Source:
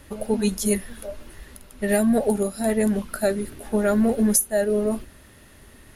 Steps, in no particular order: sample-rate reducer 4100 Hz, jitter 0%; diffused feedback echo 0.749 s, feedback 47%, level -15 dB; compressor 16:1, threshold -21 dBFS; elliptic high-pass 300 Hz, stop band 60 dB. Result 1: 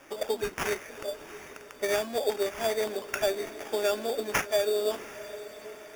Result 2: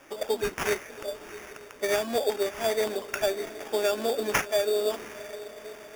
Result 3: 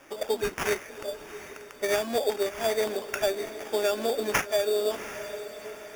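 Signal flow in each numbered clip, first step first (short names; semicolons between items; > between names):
compressor > elliptic high-pass > sample-rate reducer > diffused feedback echo; elliptic high-pass > compressor > diffused feedback echo > sample-rate reducer; elliptic high-pass > sample-rate reducer > diffused feedback echo > compressor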